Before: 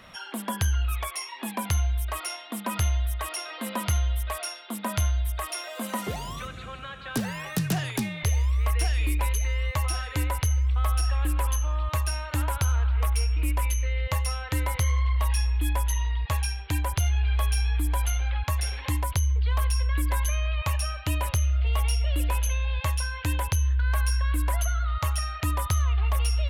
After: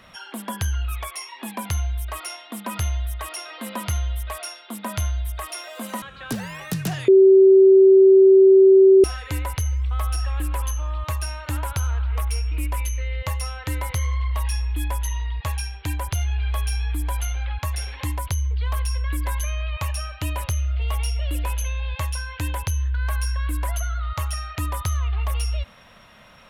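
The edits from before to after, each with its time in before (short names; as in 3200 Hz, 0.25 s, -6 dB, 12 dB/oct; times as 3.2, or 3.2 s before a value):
6.02–6.87 cut
7.93–9.89 bleep 384 Hz -8 dBFS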